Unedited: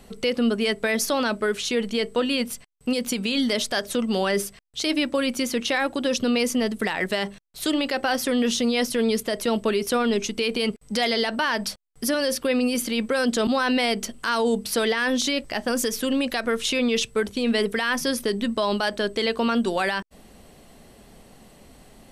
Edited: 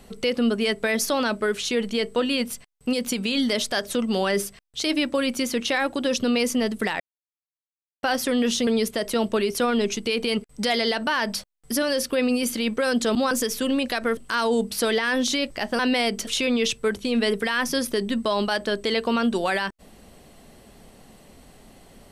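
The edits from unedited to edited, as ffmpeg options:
ffmpeg -i in.wav -filter_complex "[0:a]asplit=8[link_01][link_02][link_03][link_04][link_05][link_06][link_07][link_08];[link_01]atrim=end=7,asetpts=PTS-STARTPTS,afade=type=out:start_time=6.996:duration=0.004:curve=hsin[link_09];[link_02]atrim=start=7:end=8.03,asetpts=PTS-STARTPTS,volume=0[link_10];[link_03]atrim=start=8.03:end=8.672,asetpts=PTS-STARTPTS,afade=type=in:duration=0.004:curve=hsin[link_11];[link_04]atrim=start=8.988:end=13.632[link_12];[link_05]atrim=start=15.728:end=16.592[link_13];[link_06]atrim=start=14.108:end=15.732[link_14];[link_07]atrim=start=13.628:end=14.112[link_15];[link_08]atrim=start=16.588[link_16];[link_09][link_10][link_11]concat=n=3:v=0:a=1[link_17];[link_17][link_12]acrossfade=duration=0.004:curve1=hsin:curve2=hsin[link_18];[link_18][link_13]acrossfade=duration=0.004:curve1=hsin:curve2=hsin[link_19];[link_19][link_14]acrossfade=duration=0.004:curve1=hsin:curve2=hsin[link_20];[link_20][link_15]acrossfade=duration=0.004:curve1=hsin:curve2=hsin[link_21];[link_21][link_16]acrossfade=duration=0.004:curve1=hsin:curve2=hsin" out.wav

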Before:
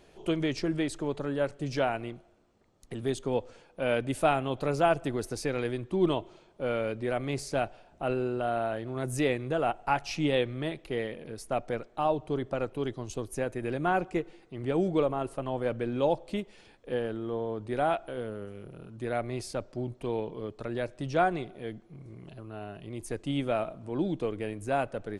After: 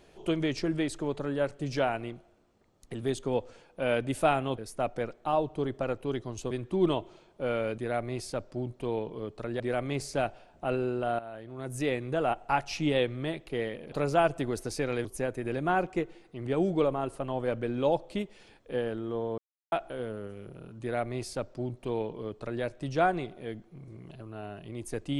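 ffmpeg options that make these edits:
ffmpeg -i in.wav -filter_complex "[0:a]asplit=10[link_01][link_02][link_03][link_04][link_05][link_06][link_07][link_08][link_09][link_10];[link_01]atrim=end=4.582[link_11];[link_02]atrim=start=11.298:end=13.232[link_12];[link_03]atrim=start=5.708:end=6.982[link_13];[link_04]atrim=start=18.988:end=20.812[link_14];[link_05]atrim=start=6.978:end=8.57,asetpts=PTS-STARTPTS,afade=type=out:start_time=1.588:duration=0.004:curve=hsin:silence=0.188365[link_15];[link_06]atrim=start=8.57:end=11.302,asetpts=PTS-STARTPTS,afade=type=in:duration=0.98:silence=0.188365[link_16];[link_07]atrim=start=4.578:end=5.712[link_17];[link_08]atrim=start=13.228:end=17.56,asetpts=PTS-STARTPTS,afade=type=out:start_time=4.328:duration=0.004:curve=hsin[link_18];[link_09]atrim=start=17.56:end=17.9,asetpts=PTS-STARTPTS,volume=0[link_19];[link_10]atrim=start=17.9,asetpts=PTS-STARTPTS,afade=type=in:duration=0.004:curve=hsin[link_20];[link_11][link_12]acrossfade=duration=0.004:curve1=hsin:curve2=hsin[link_21];[link_21][link_13]acrossfade=duration=0.004:curve1=hsin:curve2=hsin[link_22];[link_22][link_14]acrossfade=duration=0.004:curve1=hsin:curve2=hsin[link_23];[link_15][link_16]concat=n=2:v=0:a=1[link_24];[link_23][link_24]acrossfade=duration=0.004:curve1=hsin:curve2=hsin[link_25];[link_25][link_17]acrossfade=duration=0.004:curve1=hsin:curve2=hsin[link_26];[link_18][link_19][link_20]concat=n=3:v=0:a=1[link_27];[link_26][link_27]acrossfade=duration=0.004:curve1=hsin:curve2=hsin" out.wav

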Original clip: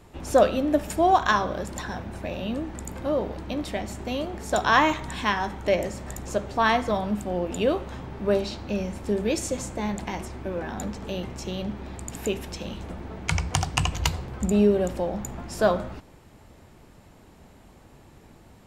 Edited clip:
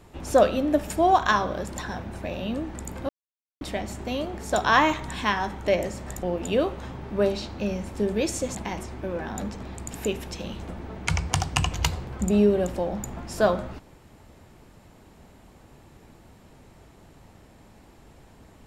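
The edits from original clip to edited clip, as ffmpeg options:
ffmpeg -i in.wav -filter_complex "[0:a]asplit=6[link_01][link_02][link_03][link_04][link_05][link_06];[link_01]atrim=end=3.09,asetpts=PTS-STARTPTS,afade=type=out:start_time=3.086:duration=0.004:curve=hsin[link_07];[link_02]atrim=start=3.09:end=3.61,asetpts=PTS-STARTPTS,volume=0[link_08];[link_03]atrim=start=3.61:end=6.232,asetpts=PTS-STARTPTS,afade=type=in:duration=0.004:curve=hsin[link_09];[link_04]atrim=start=7.318:end=9.642[link_10];[link_05]atrim=start=9.968:end=11.052[link_11];[link_06]atrim=start=11.838[link_12];[link_07][link_08][link_09]concat=n=3:v=0:a=1[link_13];[link_13][link_10]acrossfade=duration=0.004:curve1=hsin:curve2=hsin[link_14];[link_14][link_11]acrossfade=duration=0.004:curve1=hsin:curve2=hsin[link_15];[link_15][link_12]acrossfade=duration=0.004:curve1=hsin:curve2=hsin" out.wav

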